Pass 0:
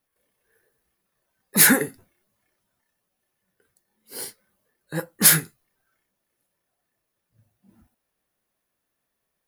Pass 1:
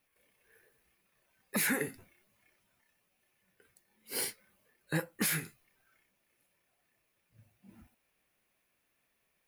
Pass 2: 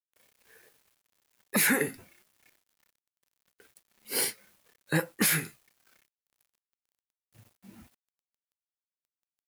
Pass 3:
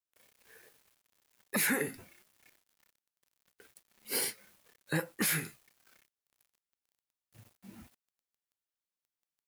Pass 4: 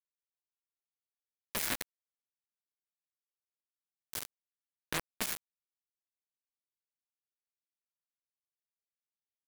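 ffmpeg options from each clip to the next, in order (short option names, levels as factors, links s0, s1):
-af "equalizer=f=2400:w=2.4:g=9.5,acompressor=threshold=0.112:ratio=12,alimiter=limit=0.0891:level=0:latency=1:release=263"
-af "lowshelf=f=64:g=-10.5,acrusher=bits=10:mix=0:aa=0.000001,volume=2.11"
-af "alimiter=limit=0.0944:level=0:latency=1:release=187"
-af "acrusher=bits=3:mix=0:aa=0.000001,volume=0.75"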